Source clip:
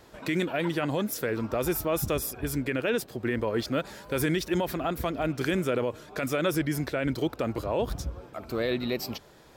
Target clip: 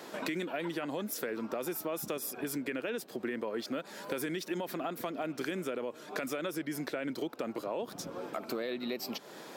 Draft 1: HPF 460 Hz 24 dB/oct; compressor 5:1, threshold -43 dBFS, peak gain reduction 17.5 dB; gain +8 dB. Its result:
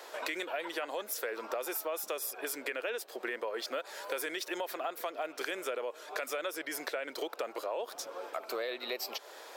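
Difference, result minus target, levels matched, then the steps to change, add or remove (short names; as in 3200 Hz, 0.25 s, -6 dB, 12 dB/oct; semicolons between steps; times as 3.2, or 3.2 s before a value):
250 Hz band -9.5 dB
change: HPF 190 Hz 24 dB/oct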